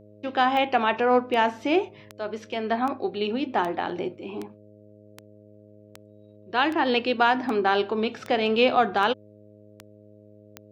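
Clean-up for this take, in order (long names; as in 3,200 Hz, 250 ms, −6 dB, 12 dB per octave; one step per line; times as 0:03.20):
click removal
hum removal 104.6 Hz, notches 6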